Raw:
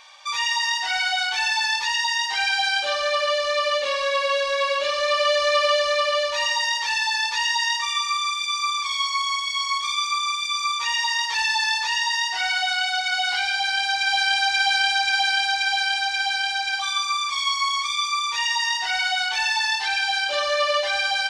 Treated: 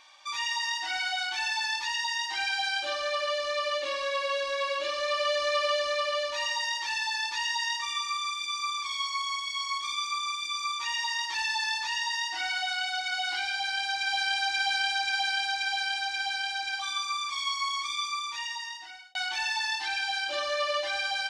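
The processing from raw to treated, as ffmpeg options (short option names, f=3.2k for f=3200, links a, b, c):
-filter_complex "[0:a]asplit=2[a][b];[a]atrim=end=19.15,asetpts=PTS-STARTPTS,afade=t=out:st=18.02:d=1.13[c];[b]atrim=start=19.15,asetpts=PTS-STARTPTS,afade=t=in:d=0.004:c=hsin[d];[c][d]concat=n=2:v=0:a=1,superequalizer=6b=3.55:7b=0.282,volume=-7.5dB"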